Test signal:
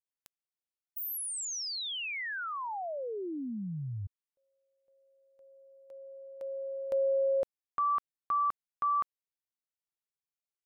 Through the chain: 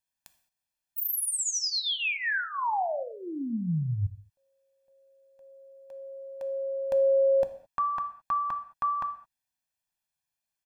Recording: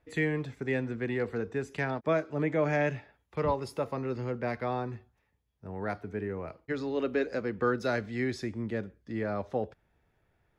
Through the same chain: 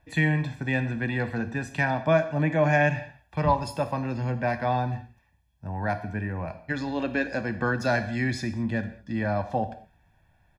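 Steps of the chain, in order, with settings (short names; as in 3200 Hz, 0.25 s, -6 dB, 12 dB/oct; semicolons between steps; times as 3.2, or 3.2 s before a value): comb 1.2 ms, depth 75%; non-linear reverb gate 0.24 s falling, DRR 9 dB; gain +4.5 dB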